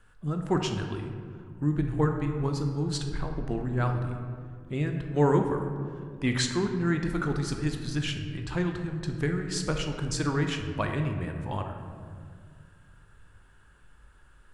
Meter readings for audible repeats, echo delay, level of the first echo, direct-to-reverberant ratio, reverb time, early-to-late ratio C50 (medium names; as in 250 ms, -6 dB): no echo, no echo, no echo, 4.0 dB, 2.0 s, 5.5 dB